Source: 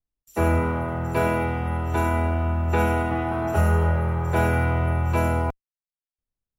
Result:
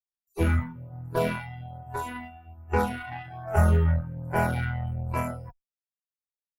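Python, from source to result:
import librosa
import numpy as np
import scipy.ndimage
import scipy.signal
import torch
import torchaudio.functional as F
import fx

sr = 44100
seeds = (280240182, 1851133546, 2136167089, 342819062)

y = fx.noise_reduce_blind(x, sr, reduce_db=26)
y = fx.cheby_harmonics(y, sr, harmonics=(7, 8), levels_db=(-27, -24), full_scale_db=-9.0)
y = fx.filter_lfo_notch(y, sr, shape='sine', hz=1.2, low_hz=390.0, high_hz=3800.0, q=0.85)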